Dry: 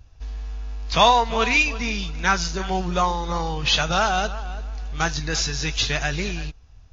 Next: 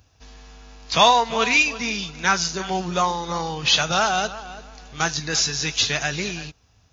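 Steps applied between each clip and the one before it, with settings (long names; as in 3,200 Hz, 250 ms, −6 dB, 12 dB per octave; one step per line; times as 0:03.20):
high-pass filter 120 Hz 12 dB per octave
high-shelf EQ 5,800 Hz +8.5 dB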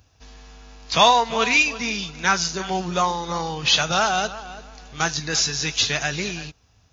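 no processing that can be heard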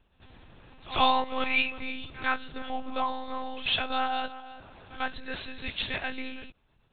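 one-pitch LPC vocoder at 8 kHz 260 Hz
echo ahead of the sound 96 ms −18 dB
level −8 dB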